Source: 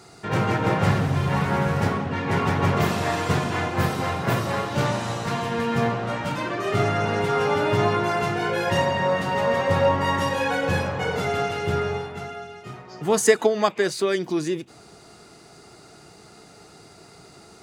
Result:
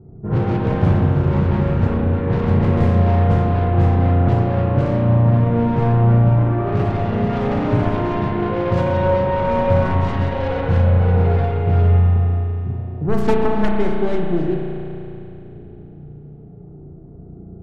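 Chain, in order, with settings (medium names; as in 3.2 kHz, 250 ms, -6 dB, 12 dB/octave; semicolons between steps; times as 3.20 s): self-modulated delay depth 0.75 ms; level-controlled noise filter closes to 350 Hz, open at -17.5 dBFS; tilt EQ -4.5 dB/octave; in parallel at +0.5 dB: compression, threshold -23 dBFS, peak gain reduction 17.5 dB; on the sum: spring tank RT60 3.1 s, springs 34 ms, chirp 25 ms, DRR -1 dB; trim -7.5 dB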